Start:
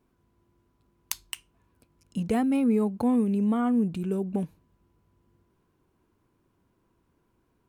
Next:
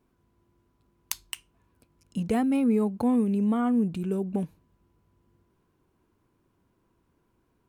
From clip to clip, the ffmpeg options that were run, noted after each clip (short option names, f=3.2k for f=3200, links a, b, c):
-af anull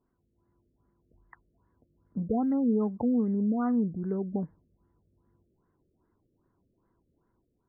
-af "dynaudnorm=f=120:g=7:m=4dB,afftfilt=real='re*lt(b*sr/1024,600*pow(2200/600,0.5+0.5*sin(2*PI*2.5*pts/sr)))':imag='im*lt(b*sr/1024,600*pow(2200/600,0.5+0.5*sin(2*PI*2.5*pts/sr)))':win_size=1024:overlap=0.75,volume=-6.5dB"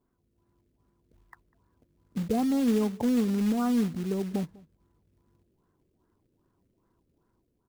-filter_complex "[0:a]acrusher=bits=4:mode=log:mix=0:aa=0.000001,asplit=2[a][b];[b]adelay=198.3,volume=-23dB,highshelf=f=4k:g=-4.46[c];[a][c]amix=inputs=2:normalize=0,volume=1dB"